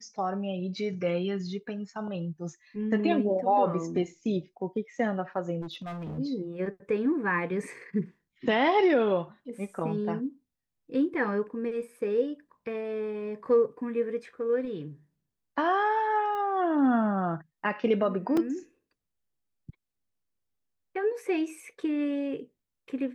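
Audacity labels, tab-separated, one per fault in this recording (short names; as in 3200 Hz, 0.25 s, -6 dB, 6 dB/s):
5.610000	6.190000	clipped -34 dBFS
16.350000	16.350000	pop -25 dBFS
18.370000	18.370000	gap 3.2 ms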